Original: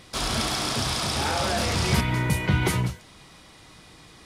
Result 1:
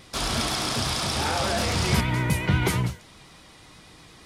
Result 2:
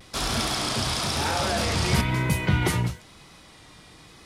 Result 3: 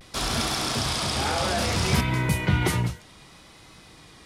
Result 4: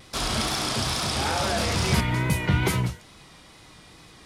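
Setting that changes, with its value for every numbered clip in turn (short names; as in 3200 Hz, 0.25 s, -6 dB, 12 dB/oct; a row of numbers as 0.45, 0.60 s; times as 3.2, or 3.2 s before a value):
vibrato, rate: 8.3, 1, 0.62, 2.3 Hz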